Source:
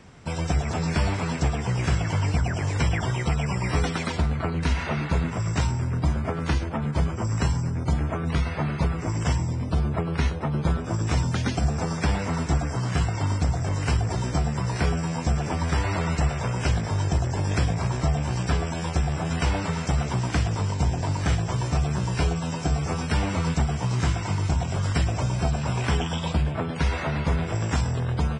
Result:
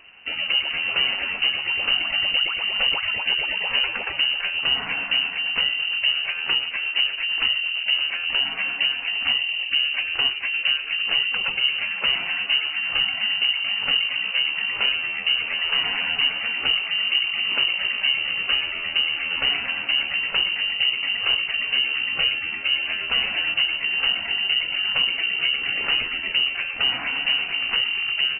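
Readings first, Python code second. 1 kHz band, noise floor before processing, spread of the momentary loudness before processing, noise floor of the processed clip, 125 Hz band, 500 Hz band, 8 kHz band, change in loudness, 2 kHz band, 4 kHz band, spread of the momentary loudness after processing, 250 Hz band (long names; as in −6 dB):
−5.5 dB, −31 dBFS, 2 LU, −31 dBFS, below −25 dB, −10.0 dB, below −40 dB, +5.0 dB, +13.0 dB, +19.5 dB, 2 LU, −18.5 dB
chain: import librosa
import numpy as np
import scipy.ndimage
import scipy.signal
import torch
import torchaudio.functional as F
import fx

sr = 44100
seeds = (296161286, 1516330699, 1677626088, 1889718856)

y = fx.freq_invert(x, sr, carrier_hz=2900)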